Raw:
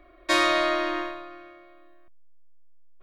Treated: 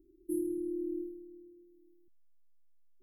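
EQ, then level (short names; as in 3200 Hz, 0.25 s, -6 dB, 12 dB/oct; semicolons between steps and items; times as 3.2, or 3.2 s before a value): brick-wall FIR band-stop 420–10000 Hz; low shelf 140 Hz -11 dB; -2.5 dB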